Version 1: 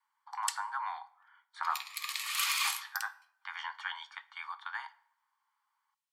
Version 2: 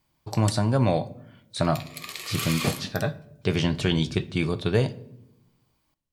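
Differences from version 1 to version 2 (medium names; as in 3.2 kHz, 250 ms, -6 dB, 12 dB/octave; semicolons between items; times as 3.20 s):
speech: remove Savitzky-Golay filter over 41 samples; master: remove steep high-pass 840 Hz 96 dB/octave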